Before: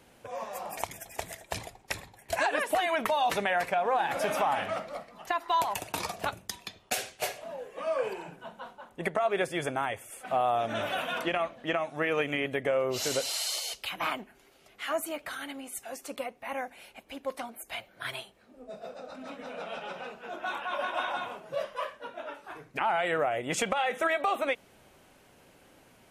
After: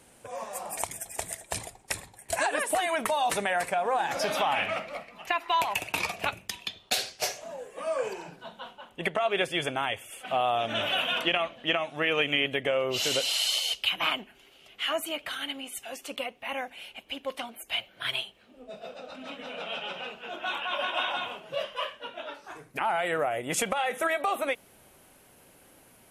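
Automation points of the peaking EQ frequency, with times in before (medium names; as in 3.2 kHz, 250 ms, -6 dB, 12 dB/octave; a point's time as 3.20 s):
peaking EQ +12.5 dB 0.62 oct
3.95 s 8.8 kHz
4.57 s 2.5 kHz
6.46 s 2.5 kHz
7.81 s 9.4 kHz
8.69 s 3 kHz
22.20 s 3 kHz
22.72 s 11 kHz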